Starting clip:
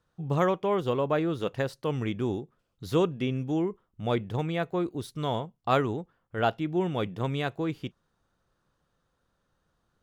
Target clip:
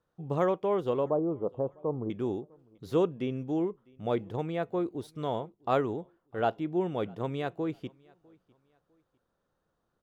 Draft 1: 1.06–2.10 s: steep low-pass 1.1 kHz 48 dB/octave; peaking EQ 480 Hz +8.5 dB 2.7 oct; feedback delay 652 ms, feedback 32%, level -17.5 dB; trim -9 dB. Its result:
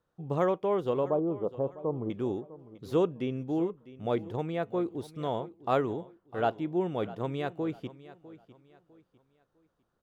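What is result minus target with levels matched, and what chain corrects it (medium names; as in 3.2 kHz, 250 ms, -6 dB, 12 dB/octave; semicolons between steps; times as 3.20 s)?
echo-to-direct +10 dB
1.06–2.10 s: steep low-pass 1.1 kHz 48 dB/octave; peaking EQ 480 Hz +8.5 dB 2.7 oct; feedback delay 652 ms, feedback 32%, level -27.5 dB; trim -9 dB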